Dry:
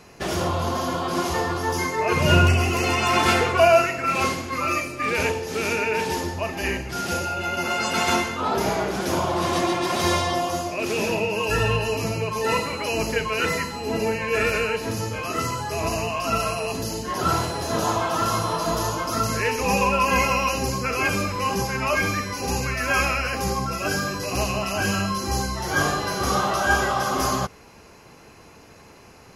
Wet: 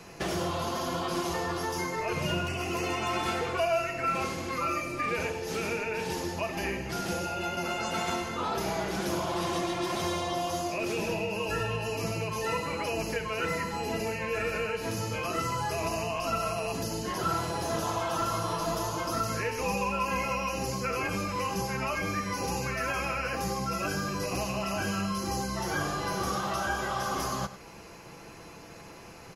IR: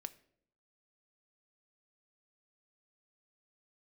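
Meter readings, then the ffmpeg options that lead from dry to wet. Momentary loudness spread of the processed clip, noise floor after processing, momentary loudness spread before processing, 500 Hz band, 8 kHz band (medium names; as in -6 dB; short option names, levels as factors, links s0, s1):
3 LU, -47 dBFS, 7 LU, -7.5 dB, -7.5 dB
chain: -filter_complex "[0:a]acrossover=split=96|1600[s0][s1][s2];[s0]acompressor=threshold=0.00794:ratio=4[s3];[s1]acompressor=threshold=0.0251:ratio=4[s4];[s2]acompressor=threshold=0.0112:ratio=4[s5];[s3][s4][s5]amix=inputs=3:normalize=0,aecho=1:1:97:0.2,asplit=2[s6][s7];[1:a]atrim=start_sample=2205,adelay=6[s8];[s7][s8]afir=irnorm=-1:irlink=0,volume=0.562[s9];[s6][s9]amix=inputs=2:normalize=0"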